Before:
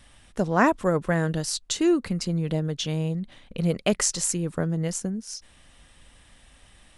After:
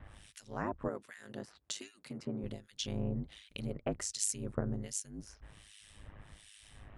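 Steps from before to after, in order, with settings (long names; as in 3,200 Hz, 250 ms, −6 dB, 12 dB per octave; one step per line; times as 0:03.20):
sub-octave generator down 1 octave, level −5 dB
downward compressor 6 to 1, threshold −34 dBFS, peak gain reduction 18.5 dB
ring modulation 52 Hz
0:00.88–0:02.44: high-pass filter 210 Hz 12 dB per octave
two-band tremolo in antiphase 1.3 Hz, depth 100%, crossover 2,000 Hz
level +5.5 dB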